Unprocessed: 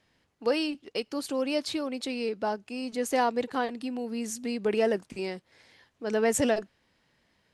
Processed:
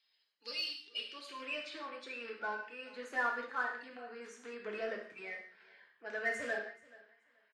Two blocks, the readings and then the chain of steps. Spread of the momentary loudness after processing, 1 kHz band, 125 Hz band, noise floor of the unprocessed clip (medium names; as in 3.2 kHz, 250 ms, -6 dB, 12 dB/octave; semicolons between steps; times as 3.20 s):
13 LU, -9.0 dB, no reading, -72 dBFS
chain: coarse spectral quantiser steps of 30 dB; on a send: feedback delay 429 ms, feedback 18%, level -23 dB; on the sum: band-pass sweep 4.4 kHz -> 1.6 kHz, 0.76–1.64 s; in parallel at -6.5 dB: saturation -39 dBFS, distortion -6 dB; on the sum: treble shelf 10 kHz -9 dB; gated-style reverb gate 220 ms falling, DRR 0.5 dB; trim -3 dB